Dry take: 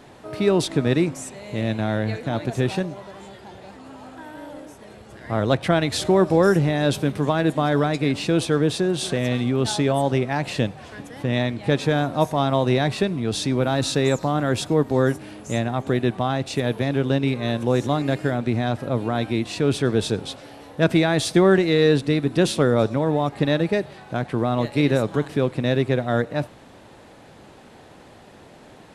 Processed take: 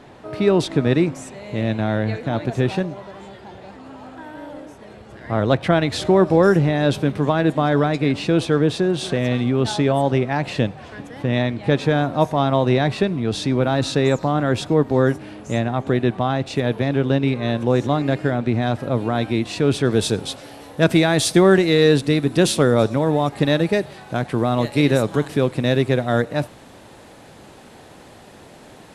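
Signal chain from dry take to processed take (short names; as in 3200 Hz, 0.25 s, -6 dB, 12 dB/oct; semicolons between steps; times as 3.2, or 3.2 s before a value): high shelf 6500 Hz -11 dB, from 18.62 s -3 dB, from 19.91 s +7 dB; gain +2.5 dB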